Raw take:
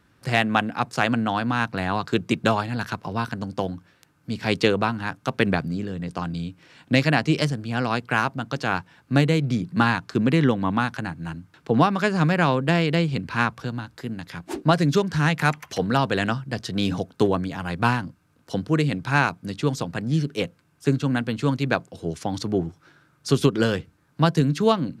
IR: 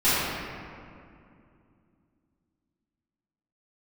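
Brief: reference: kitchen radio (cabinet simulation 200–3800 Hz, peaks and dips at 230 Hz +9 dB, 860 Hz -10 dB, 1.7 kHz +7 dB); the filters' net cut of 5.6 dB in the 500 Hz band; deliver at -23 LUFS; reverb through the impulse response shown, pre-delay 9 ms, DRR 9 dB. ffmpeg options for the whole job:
-filter_complex "[0:a]equalizer=f=500:t=o:g=-6.5,asplit=2[s0][s1];[1:a]atrim=start_sample=2205,adelay=9[s2];[s1][s2]afir=irnorm=-1:irlink=0,volume=0.0422[s3];[s0][s3]amix=inputs=2:normalize=0,highpass=200,equalizer=f=230:t=q:w=4:g=9,equalizer=f=860:t=q:w=4:g=-10,equalizer=f=1700:t=q:w=4:g=7,lowpass=f=3800:w=0.5412,lowpass=f=3800:w=1.3066,volume=1.06"

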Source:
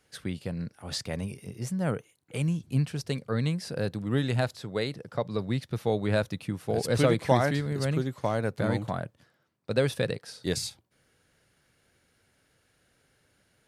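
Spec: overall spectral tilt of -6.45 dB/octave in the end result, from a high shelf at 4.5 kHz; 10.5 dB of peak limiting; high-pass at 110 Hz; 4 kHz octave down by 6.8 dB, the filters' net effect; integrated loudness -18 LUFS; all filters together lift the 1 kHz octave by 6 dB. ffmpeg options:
-af "highpass=110,equalizer=f=1000:t=o:g=8.5,equalizer=f=4000:t=o:g=-6.5,highshelf=f=4500:g=-4,volume=4.73,alimiter=limit=0.708:level=0:latency=1"

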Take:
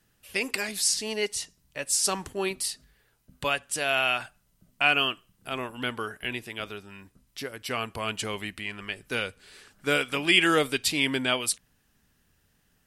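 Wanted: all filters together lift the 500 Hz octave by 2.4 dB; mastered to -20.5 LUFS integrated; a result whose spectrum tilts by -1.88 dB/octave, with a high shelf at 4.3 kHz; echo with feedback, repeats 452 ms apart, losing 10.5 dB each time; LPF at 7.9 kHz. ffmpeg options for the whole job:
-af "lowpass=7900,equalizer=f=500:t=o:g=3,highshelf=f=4300:g=3.5,aecho=1:1:452|904|1356:0.299|0.0896|0.0269,volume=1.88"

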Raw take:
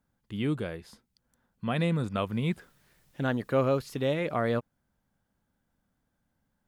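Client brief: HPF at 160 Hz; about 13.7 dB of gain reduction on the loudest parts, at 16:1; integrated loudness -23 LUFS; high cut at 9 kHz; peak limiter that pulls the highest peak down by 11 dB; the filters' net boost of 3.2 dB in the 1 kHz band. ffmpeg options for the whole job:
-af "highpass=160,lowpass=9000,equalizer=f=1000:t=o:g=4.5,acompressor=threshold=0.0224:ratio=16,volume=10,alimiter=limit=0.282:level=0:latency=1"

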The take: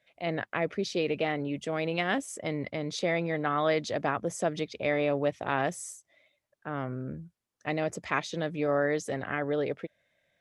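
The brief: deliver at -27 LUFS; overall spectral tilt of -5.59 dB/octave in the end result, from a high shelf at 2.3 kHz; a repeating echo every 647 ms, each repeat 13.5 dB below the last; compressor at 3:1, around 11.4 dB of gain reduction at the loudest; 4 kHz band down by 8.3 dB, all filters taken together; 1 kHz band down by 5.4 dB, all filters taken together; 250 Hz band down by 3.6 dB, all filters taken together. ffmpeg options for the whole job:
-af "equalizer=f=250:t=o:g=-4.5,equalizer=f=1000:t=o:g=-6,highshelf=f=2300:g=-7,equalizer=f=4000:t=o:g=-4,acompressor=threshold=0.00794:ratio=3,aecho=1:1:647|1294:0.211|0.0444,volume=7.08"

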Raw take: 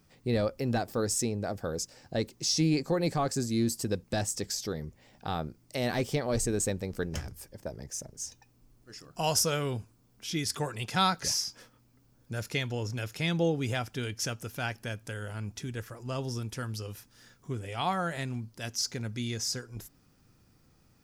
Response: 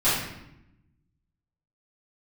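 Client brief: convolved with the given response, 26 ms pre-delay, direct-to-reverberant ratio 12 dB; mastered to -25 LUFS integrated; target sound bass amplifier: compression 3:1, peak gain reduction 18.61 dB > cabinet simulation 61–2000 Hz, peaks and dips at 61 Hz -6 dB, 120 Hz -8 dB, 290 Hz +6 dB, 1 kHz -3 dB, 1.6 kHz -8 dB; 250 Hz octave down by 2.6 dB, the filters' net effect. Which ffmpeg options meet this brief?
-filter_complex "[0:a]equalizer=f=250:t=o:g=-6.5,asplit=2[s0][s1];[1:a]atrim=start_sample=2205,adelay=26[s2];[s1][s2]afir=irnorm=-1:irlink=0,volume=0.0422[s3];[s0][s3]amix=inputs=2:normalize=0,acompressor=threshold=0.00447:ratio=3,highpass=f=61:w=0.5412,highpass=f=61:w=1.3066,equalizer=f=61:t=q:w=4:g=-6,equalizer=f=120:t=q:w=4:g=-8,equalizer=f=290:t=q:w=4:g=6,equalizer=f=1000:t=q:w=4:g=-3,equalizer=f=1600:t=q:w=4:g=-8,lowpass=f=2000:w=0.5412,lowpass=f=2000:w=1.3066,volume=16.8"

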